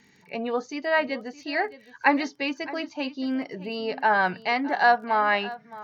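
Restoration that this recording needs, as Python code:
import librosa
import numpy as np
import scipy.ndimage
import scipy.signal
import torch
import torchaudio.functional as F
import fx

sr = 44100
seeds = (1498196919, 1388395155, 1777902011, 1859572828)

y = fx.fix_declick_ar(x, sr, threshold=6.5)
y = fx.fix_echo_inverse(y, sr, delay_ms=616, level_db=-17.5)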